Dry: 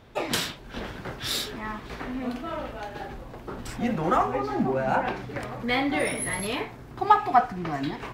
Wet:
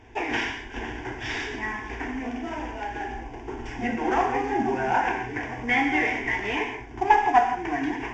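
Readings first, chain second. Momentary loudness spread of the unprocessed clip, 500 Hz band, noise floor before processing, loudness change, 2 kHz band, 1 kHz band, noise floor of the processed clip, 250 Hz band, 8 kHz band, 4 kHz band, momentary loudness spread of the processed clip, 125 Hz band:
14 LU, -0.5 dB, -43 dBFS, +1.5 dB, +6.0 dB, +2.0 dB, -40 dBFS, +0.5 dB, -10.5 dB, -4.5 dB, 13 LU, -3.5 dB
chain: CVSD 32 kbps; in parallel at -2.5 dB: compressor, threshold -34 dBFS, peak gain reduction 19 dB; on the sum: fixed phaser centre 840 Hz, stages 8; dynamic EQ 1700 Hz, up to +5 dB, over -39 dBFS, Q 0.85; non-linear reverb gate 0.19 s flat, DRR 4.5 dB

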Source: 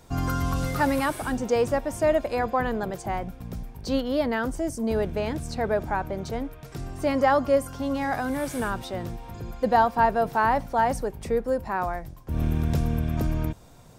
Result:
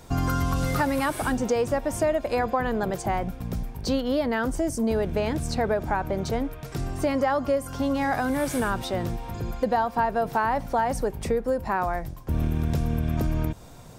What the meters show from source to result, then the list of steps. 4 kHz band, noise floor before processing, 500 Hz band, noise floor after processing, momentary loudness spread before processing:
+1.5 dB, -47 dBFS, -0.5 dB, -42 dBFS, 12 LU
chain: compressor 5:1, threshold -26 dBFS, peak gain reduction 10.5 dB; gain +5 dB

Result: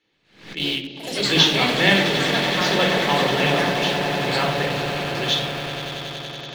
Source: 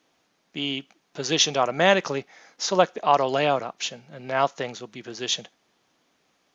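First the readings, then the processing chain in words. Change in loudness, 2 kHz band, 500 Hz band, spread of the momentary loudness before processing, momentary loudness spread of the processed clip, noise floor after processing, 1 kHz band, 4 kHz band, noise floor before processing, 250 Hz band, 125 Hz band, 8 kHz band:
+4.5 dB, +9.0 dB, +2.0 dB, 14 LU, 13 LU, -55 dBFS, +1.0 dB, +8.0 dB, -69 dBFS, +8.0 dB, +10.5 dB, n/a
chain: on a send: swelling echo 94 ms, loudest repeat 8, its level -13 dB; on the sum: shoebox room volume 2100 m³, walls furnished, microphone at 4.2 m; harmonic-percussive split harmonic -5 dB; in parallel at -5.5 dB: bit-crush 4-bit; on the sum: low shelf 450 Hz +11.5 dB; echoes that change speed 0.125 s, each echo +4 st, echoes 3, each echo -6 dB; band shelf 2700 Hz +11.5 dB; backwards sustainer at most 110 dB/s; gain -11.5 dB

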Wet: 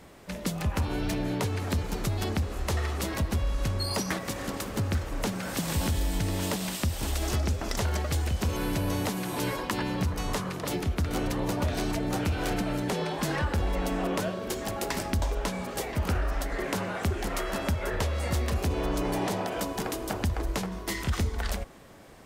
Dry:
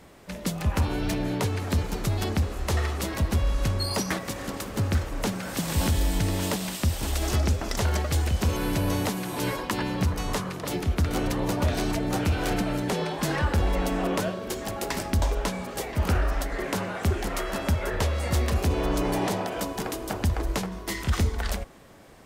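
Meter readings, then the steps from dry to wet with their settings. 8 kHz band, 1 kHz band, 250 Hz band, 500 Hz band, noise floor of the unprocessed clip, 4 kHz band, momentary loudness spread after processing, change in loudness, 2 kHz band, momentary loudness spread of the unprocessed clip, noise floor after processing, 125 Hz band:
-2.0 dB, -2.0 dB, -2.5 dB, -2.5 dB, -37 dBFS, -2.0 dB, 3 LU, -2.5 dB, -2.0 dB, 5 LU, -38 dBFS, -3.5 dB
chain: compressor 2:1, threshold -27 dBFS, peak gain reduction 4.5 dB

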